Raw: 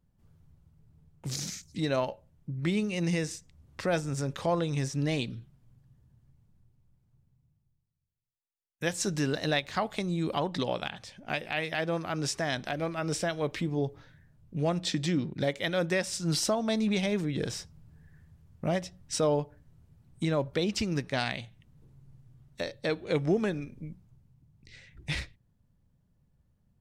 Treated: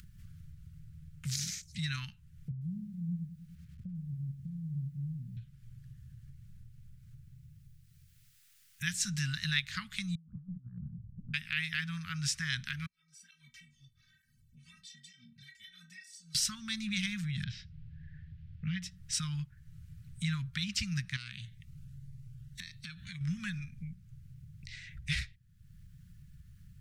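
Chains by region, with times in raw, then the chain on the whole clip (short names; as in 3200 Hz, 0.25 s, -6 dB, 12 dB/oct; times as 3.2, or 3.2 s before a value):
2.51–5.37 ladder low-pass 280 Hz, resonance 35% + lo-fi delay 0.101 s, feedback 55%, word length 11-bit, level -12.5 dB
10.15–11.34 steep low-pass 540 Hz + negative-ratio compressor -39 dBFS, ratio -0.5
12.86–16.35 passive tone stack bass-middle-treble 6-0-2 + metallic resonator 230 Hz, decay 0.38 s, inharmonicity 0.008 + tape flanging out of phase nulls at 1.1 Hz, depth 7 ms
17.44–18.82 LPF 3800 Hz 24 dB/oct + bell 980 Hz -13.5 dB 0.93 oct
21.16–23.21 compressor 4:1, threshold -37 dBFS + cascading phaser rising 1.9 Hz
whole clip: inverse Chebyshev band-stop 350–730 Hz, stop band 60 dB; upward compressor, threshold -39 dBFS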